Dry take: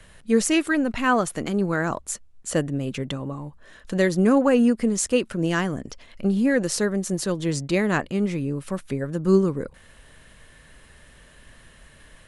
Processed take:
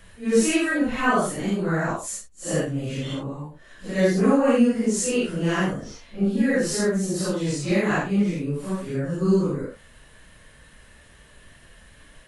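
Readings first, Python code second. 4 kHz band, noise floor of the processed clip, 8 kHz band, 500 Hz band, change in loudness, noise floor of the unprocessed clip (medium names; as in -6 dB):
-0.5 dB, -52 dBFS, 0.0 dB, 0.0 dB, 0.0 dB, -52 dBFS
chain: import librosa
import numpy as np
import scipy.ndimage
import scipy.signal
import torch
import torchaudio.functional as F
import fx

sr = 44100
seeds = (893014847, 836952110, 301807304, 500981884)

y = fx.phase_scramble(x, sr, seeds[0], window_ms=200)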